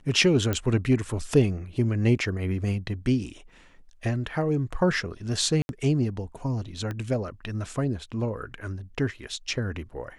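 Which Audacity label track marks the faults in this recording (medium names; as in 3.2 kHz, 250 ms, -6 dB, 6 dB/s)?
0.530000	0.530000	pop -12 dBFS
5.620000	5.690000	dropout 71 ms
6.910000	6.910000	pop -20 dBFS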